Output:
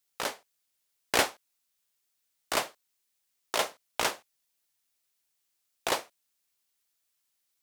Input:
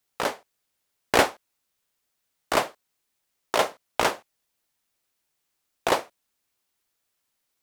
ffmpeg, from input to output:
-af "highshelf=f=2.1k:g=9.5,volume=-9dB"

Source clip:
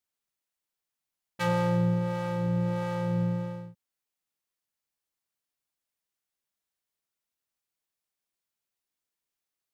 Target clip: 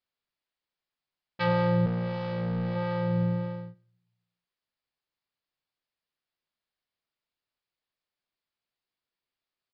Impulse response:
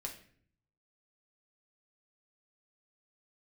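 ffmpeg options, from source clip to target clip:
-filter_complex "[0:a]asettb=1/sr,asplit=3[a][b][c];[a]atrim=end=1.864[d];[b]atrim=start=1.86:end=2.76,asetpts=PTS-STARTPTS,afade=t=in:d=0.004:c=qsin,afade=t=out:st=0.896:d=0.004:c=qsin,asoftclip=type=hard:threshold=-28dB[e];[c]atrim=start=2.756[f];[d][e]acrossfade=d=0.004:c1=hsin:c2=qsin[g];[g][f]acrossfade=d=0.004:c1=qsin:c2=hsin,aresample=11025,aresample=44100,asplit=2[h][i];[1:a]atrim=start_sample=2205,asetrate=41895,aresample=44100[j];[i][j]afir=irnorm=-1:irlink=0,volume=-11.5dB[k];[h][k]amix=inputs=2:normalize=0"

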